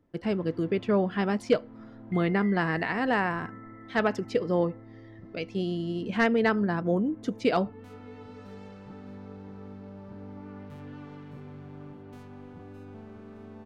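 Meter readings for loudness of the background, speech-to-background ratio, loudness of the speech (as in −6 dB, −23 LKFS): −46.0 LKFS, 18.0 dB, −28.0 LKFS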